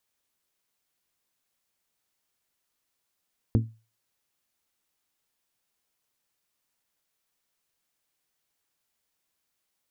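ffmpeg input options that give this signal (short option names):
-f lavfi -i "aevalsrc='0.158*pow(10,-3*t/0.32)*sin(2*PI*112*t)+0.1*pow(10,-3*t/0.197)*sin(2*PI*224*t)+0.0631*pow(10,-3*t/0.173)*sin(2*PI*268.8*t)+0.0398*pow(10,-3*t/0.148)*sin(2*PI*336*t)+0.0251*pow(10,-3*t/0.121)*sin(2*PI*448*t)':d=0.89:s=44100"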